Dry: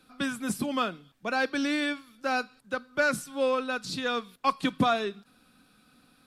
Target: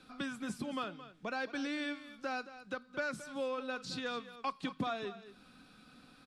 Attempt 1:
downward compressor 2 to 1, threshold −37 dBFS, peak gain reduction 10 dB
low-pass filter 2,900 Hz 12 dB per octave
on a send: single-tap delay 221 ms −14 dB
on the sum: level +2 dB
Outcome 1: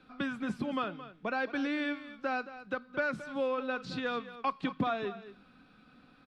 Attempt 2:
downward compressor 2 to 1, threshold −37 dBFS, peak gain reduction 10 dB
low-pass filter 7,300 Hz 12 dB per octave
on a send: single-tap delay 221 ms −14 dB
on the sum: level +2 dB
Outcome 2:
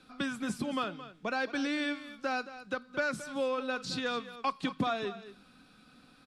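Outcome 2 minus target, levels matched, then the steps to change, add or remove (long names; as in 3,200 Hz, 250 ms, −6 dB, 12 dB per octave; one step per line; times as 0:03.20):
downward compressor: peak gain reduction −5 dB
change: downward compressor 2 to 1, threshold −47.5 dBFS, peak gain reduction 15 dB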